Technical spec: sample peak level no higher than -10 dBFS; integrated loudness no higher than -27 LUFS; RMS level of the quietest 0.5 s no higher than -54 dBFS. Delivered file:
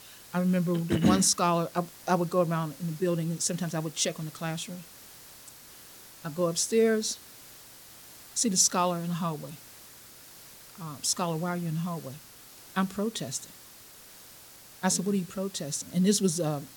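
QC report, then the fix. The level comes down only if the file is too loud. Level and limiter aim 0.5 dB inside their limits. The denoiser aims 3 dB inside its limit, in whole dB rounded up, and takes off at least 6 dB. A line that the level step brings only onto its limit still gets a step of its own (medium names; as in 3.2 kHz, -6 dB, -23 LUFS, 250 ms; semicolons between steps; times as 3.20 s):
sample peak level -8.5 dBFS: fail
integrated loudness -28.5 LUFS: pass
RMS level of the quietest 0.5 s -51 dBFS: fail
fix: noise reduction 6 dB, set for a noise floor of -51 dBFS; peak limiter -10.5 dBFS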